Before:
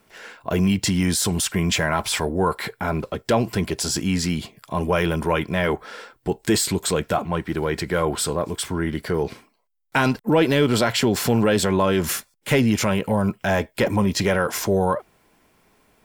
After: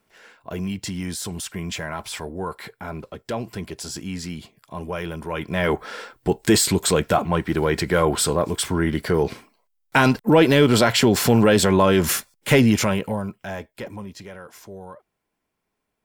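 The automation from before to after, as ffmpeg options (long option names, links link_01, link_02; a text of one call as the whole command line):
ffmpeg -i in.wav -af "volume=3dB,afade=type=in:start_time=5.3:duration=0.54:silence=0.266073,afade=type=out:start_time=12.64:duration=0.64:silence=0.251189,afade=type=out:start_time=13.28:duration=0.97:silence=0.316228" out.wav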